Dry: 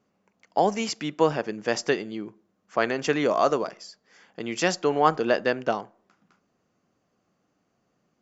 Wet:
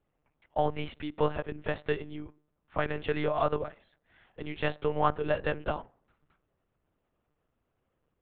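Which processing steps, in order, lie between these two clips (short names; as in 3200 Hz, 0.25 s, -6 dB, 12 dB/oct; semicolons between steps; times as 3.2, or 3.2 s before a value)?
monotone LPC vocoder at 8 kHz 150 Hz; gain -6 dB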